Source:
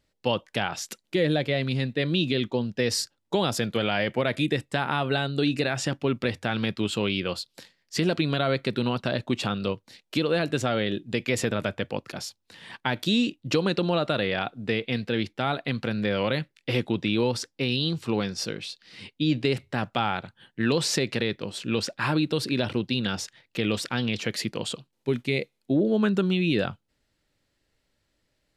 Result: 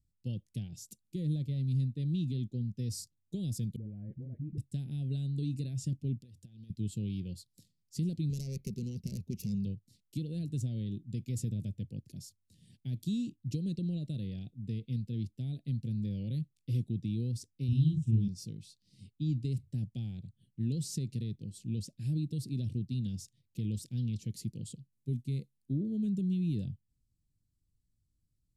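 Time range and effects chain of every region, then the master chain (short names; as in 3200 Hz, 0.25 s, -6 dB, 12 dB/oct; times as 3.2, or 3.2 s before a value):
3.76–4.58 steep low-pass 1600 Hz + compressor 2.5:1, threshold -30 dBFS + dispersion highs, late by 61 ms, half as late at 340 Hz
6.21–6.7 low shelf 340 Hz -7.5 dB + notch 2200 Hz, Q 7.4 + compressor 12:1, threshold -38 dBFS
8.29–9.65 self-modulated delay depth 0.19 ms + ripple EQ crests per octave 0.82, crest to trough 12 dB
17.68–18.28 bell 93 Hz +7.5 dB 2.4 oct + fixed phaser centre 3000 Hz, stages 8 + doubler 45 ms -3 dB
whole clip: Chebyshev band-stop 130–8800 Hz, order 2; high shelf 3600 Hz -9.5 dB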